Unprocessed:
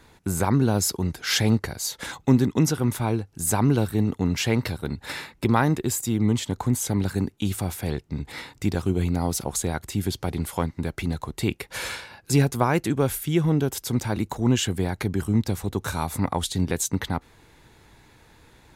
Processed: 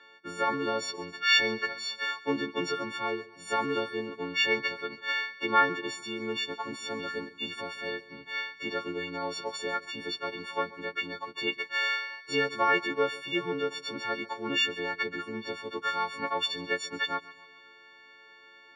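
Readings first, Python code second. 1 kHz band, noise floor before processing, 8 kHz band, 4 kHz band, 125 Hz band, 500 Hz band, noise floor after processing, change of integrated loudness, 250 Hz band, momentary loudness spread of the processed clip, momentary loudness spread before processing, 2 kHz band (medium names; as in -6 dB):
-0.5 dB, -57 dBFS, -17.5 dB, +1.0 dB, -25.5 dB, -4.0 dB, -55 dBFS, -5.5 dB, -13.5 dB, 11 LU, 9 LU, +4.5 dB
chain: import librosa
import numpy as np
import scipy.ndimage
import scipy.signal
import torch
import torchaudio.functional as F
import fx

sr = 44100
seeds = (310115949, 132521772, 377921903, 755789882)

y = fx.freq_snap(x, sr, grid_st=4)
y = fx.cabinet(y, sr, low_hz=450.0, low_slope=12, high_hz=3700.0, hz=(450.0, 730.0, 1600.0), db=(6, -8, 6))
y = fx.echo_feedback(y, sr, ms=138, feedback_pct=50, wet_db=-19.5)
y = F.gain(torch.from_numpy(y), -4.0).numpy()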